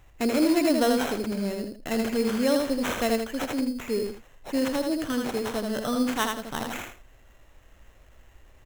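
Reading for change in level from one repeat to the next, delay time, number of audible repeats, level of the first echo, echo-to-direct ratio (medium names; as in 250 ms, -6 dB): -12.0 dB, 80 ms, 2, -4.0 dB, -3.5 dB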